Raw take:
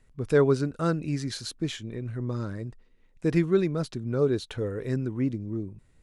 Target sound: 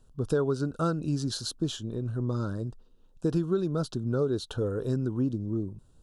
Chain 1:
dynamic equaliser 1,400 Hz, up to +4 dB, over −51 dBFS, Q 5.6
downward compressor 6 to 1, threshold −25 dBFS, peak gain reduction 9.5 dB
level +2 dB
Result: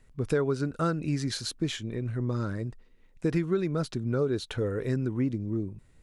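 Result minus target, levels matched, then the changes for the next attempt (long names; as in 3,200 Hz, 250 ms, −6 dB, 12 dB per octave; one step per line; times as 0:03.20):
2,000 Hz band +5.5 dB
add after dynamic equaliser: Butterworth band-reject 2,100 Hz, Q 1.4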